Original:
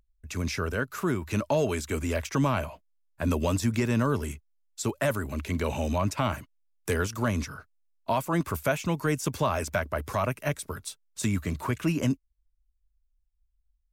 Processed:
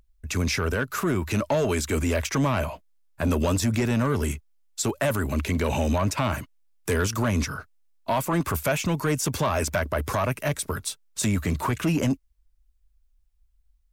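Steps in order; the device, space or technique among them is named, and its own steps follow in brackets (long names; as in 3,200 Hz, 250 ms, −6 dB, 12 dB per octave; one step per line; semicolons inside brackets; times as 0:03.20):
soft clipper into limiter (soft clipping −20.5 dBFS, distortion −16 dB; brickwall limiter −25 dBFS, peak gain reduction 4 dB)
level +8 dB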